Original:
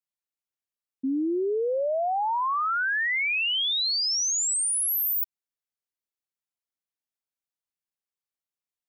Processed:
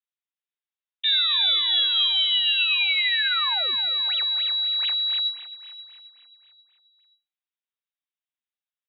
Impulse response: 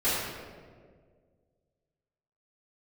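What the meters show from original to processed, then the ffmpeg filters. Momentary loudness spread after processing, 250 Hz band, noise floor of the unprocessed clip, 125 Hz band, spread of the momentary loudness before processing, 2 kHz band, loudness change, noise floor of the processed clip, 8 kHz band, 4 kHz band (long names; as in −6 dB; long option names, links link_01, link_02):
8 LU, below −25 dB, below −85 dBFS, can't be measured, 5 LU, +1.0 dB, +4.5 dB, below −85 dBFS, below −40 dB, +10.5 dB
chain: -af "aeval=exprs='0.075*(cos(1*acos(clip(val(0)/0.075,-1,1)))-cos(1*PI/2))+0.0335*(cos(8*acos(clip(val(0)/0.075,-1,1)))-cos(8*PI/2))':channel_layout=same,highshelf=frequency=2600:gain=8,aecho=1:1:7.4:0.47,lowpass=frequency=3300:width_type=q:width=0.5098,lowpass=frequency=3300:width_type=q:width=0.6013,lowpass=frequency=3300:width_type=q:width=0.9,lowpass=frequency=3300:width_type=q:width=2.563,afreqshift=-3900,aderivative,aecho=1:1:266|532|798|1064|1330|1596|1862:0.282|0.163|0.0948|0.055|0.0319|0.0185|0.0107,volume=6.5dB"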